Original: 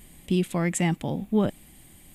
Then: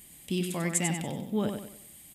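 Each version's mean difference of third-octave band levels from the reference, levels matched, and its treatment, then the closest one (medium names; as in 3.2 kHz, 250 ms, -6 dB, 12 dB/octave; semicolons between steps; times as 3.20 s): 6.5 dB: high-pass 90 Hz 6 dB/octave; treble shelf 3.1 kHz +10 dB; on a send: feedback delay 95 ms, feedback 38%, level -6 dB; on the sum: trim -6.5 dB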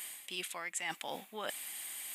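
14.5 dB: high-pass 1.2 kHz 12 dB/octave; reverse; compression 6:1, threshold -49 dBFS, peak gain reduction 21.5 dB; reverse; trim +11.5 dB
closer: first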